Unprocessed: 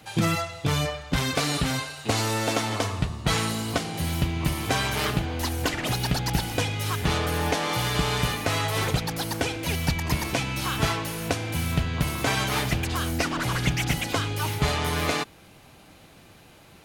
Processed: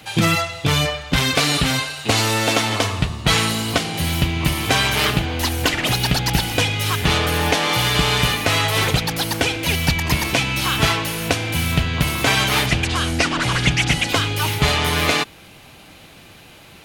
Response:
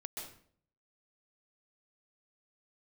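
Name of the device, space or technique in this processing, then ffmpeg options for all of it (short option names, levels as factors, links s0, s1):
presence and air boost: -filter_complex "[0:a]equalizer=f=2900:t=o:w=1.4:g=5.5,highshelf=f=11000:g=3.5,asettb=1/sr,asplit=3[s0][s1][s2];[s0]atrim=end=12.664[s3];[s1]atrim=start=12.66:end=14.09,asetpts=PTS-STARTPTS,afade=t=in:d=0.004:c=qsin,afade=t=out:st=1.426:d=0.004:c=qsin,lowpass=f=9900:w=0.5412,lowpass=f=9900:w=1.3066[s4];[s2]atrim=start=14.086[s5];[s3][s4]acrossfade=d=0.004:c1=hsin:c2=qsin[s6];[s6][s5]acrossfade=d=0.004:c1=qsin:c2=hsin,volume=1.88"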